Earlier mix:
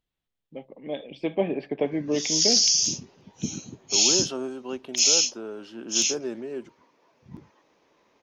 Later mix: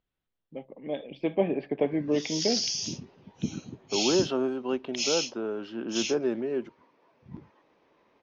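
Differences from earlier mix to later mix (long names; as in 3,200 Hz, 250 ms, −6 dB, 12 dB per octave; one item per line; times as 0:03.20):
second voice +4.5 dB
master: add high-frequency loss of the air 190 metres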